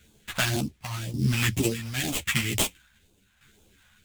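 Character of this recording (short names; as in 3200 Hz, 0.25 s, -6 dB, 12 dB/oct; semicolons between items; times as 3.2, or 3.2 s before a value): aliases and images of a low sample rate 5200 Hz, jitter 20%; phasing stages 2, 2 Hz, lowest notch 350–1700 Hz; tremolo saw down 0.88 Hz, depth 65%; a shimmering, thickened sound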